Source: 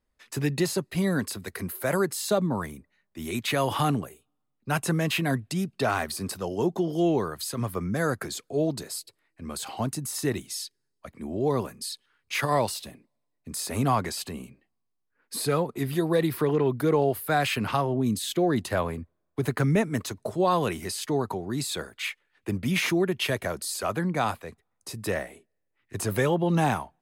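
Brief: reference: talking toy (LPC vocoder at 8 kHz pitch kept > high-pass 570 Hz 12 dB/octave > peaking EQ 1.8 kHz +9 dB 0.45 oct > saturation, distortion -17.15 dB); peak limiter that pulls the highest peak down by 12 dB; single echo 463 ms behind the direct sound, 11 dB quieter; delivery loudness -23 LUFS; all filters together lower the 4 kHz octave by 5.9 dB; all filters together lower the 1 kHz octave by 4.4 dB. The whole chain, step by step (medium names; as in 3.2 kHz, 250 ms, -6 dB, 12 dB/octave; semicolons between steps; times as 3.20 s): peaking EQ 1 kHz -5.5 dB; peaking EQ 4 kHz -8 dB; peak limiter -24.5 dBFS; delay 463 ms -11 dB; LPC vocoder at 8 kHz pitch kept; high-pass 570 Hz 12 dB/octave; peaking EQ 1.8 kHz +9 dB 0.45 oct; saturation -27.5 dBFS; trim +17.5 dB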